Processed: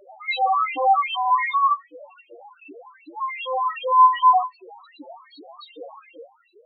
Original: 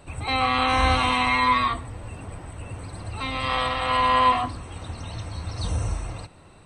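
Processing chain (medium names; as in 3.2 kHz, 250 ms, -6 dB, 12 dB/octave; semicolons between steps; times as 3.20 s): elliptic band-pass 110–4400 Hz; bass shelf 490 Hz +5.5 dB; LFO high-pass saw up 2.6 Hz 310–3400 Hz; loudest bins only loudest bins 2; trim +4 dB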